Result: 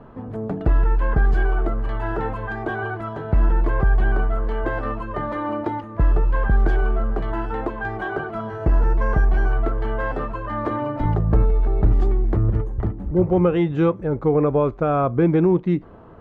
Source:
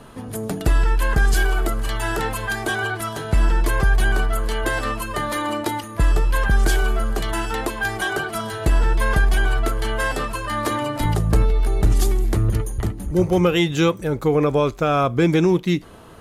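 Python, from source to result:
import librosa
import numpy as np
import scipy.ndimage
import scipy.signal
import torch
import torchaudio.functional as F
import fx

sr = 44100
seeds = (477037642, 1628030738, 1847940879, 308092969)

y = fx.resample_bad(x, sr, factor=6, down='filtered', up='hold', at=(8.49, 9.52))
y = scipy.signal.sosfilt(scipy.signal.butter(2, 1200.0, 'lowpass', fs=sr, output='sos'), y)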